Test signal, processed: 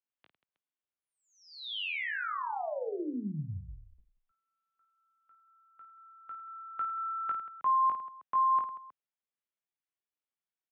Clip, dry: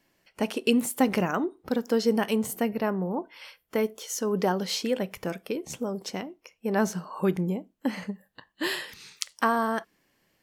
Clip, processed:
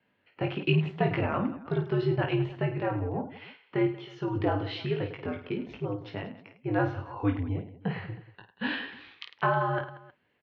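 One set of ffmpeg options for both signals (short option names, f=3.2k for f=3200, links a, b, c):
-af "highpass=f=190:t=q:w=0.5412,highpass=f=190:t=q:w=1.307,lowpass=f=3.5k:t=q:w=0.5176,lowpass=f=3.5k:t=q:w=0.7071,lowpass=f=3.5k:t=q:w=1.932,afreqshift=-87,aecho=1:1:20|52|103.2|185.1|316.2:0.631|0.398|0.251|0.158|0.1,volume=-3.5dB"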